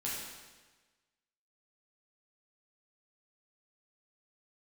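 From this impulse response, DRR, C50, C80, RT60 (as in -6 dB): -6.5 dB, 0.0 dB, 2.0 dB, 1.3 s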